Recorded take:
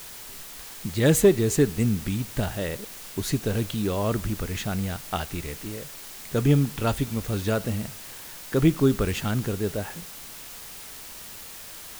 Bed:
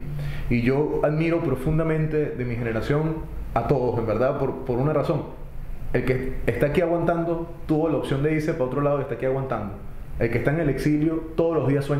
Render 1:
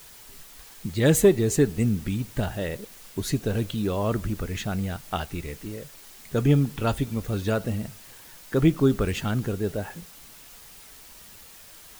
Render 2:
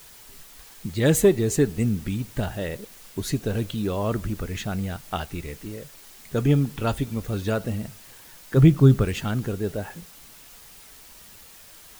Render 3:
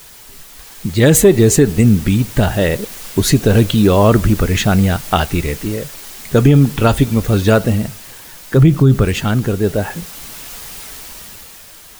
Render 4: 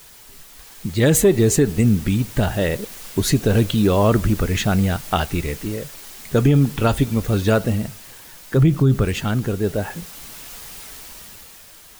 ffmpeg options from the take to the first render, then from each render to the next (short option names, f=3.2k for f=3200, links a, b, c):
-af "afftdn=nr=7:nf=-41"
-filter_complex "[0:a]asettb=1/sr,asplit=3[a][b][c];[a]atrim=end=8.564[d];[b]atrim=start=8.56:end=9.04,asetpts=PTS-STARTPTS,afade=t=in:d=0.004:c=qsin,afade=t=out:st=0.476:d=0.004:c=qsin,equalizer=f=130:t=o:w=0.77:g=11.5[e];[c]atrim=start=9.036[f];[d][e]acrossfade=d=0.004:c1=hsin:c2=qsin[g];[g][f]acrossfade=d=0.004:c1=qsin:c2=hsin"
-af "dynaudnorm=f=140:g=13:m=8dB,alimiter=level_in=8dB:limit=-1dB:release=50:level=0:latency=1"
-af "volume=-5.5dB"